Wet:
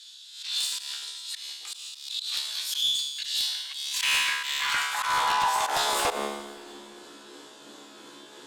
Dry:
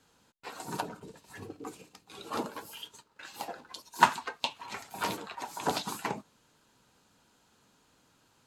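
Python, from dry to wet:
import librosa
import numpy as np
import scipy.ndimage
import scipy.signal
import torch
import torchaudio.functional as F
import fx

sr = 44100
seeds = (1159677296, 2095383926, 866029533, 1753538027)

p1 = fx.pitch_heads(x, sr, semitones=1.0)
p2 = scipy.signal.sosfilt(scipy.signal.butter(4, 11000.0, 'lowpass', fs=sr, output='sos'), p1)
p3 = fx.peak_eq(p2, sr, hz=3500.0, db=9.0, octaves=0.26)
p4 = fx.over_compress(p3, sr, threshold_db=-45.0, ratio=-1.0)
p5 = p3 + (p4 * 10.0 ** (2.0 / 20.0))
p6 = fx.cheby_harmonics(p5, sr, harmonics=(8,), levels_db=(-10,), full_scale_db=-4.0)
p7 = fx.comb_fb(p6, sr, f0_hz=71.0, decay_s=0.97, harmonics='all', damping=0.0, mix_pct=90)
p8 = fx.filter_sweep_highpass(p7, sr, from_hz=3900.0, to_hz=330.0, start_s=3.54, end_s=6.68, q=2.7)
p9 = fx.auto_swell(p8, sr, attack_ms=145.0)
p10 = fx.fold_sine(p9, sr, drive_db=7, ceiling_db=-26.5)
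p11 = p10 + fx.echo_feedback(p10, sr, ms=175, feedback_pct=58, wet_db=-19.0, dry=0)
p12 = fx.rev_spring(p11, sr, rt60_s=3.6, pass_ms=(52,), chirp_ms=55, drr_db=17.5)
p13 = fx.pre_swell(p12, sr, db_per_s=78.0)
y = p13 * 10.0 ** (7.5 / 20.0)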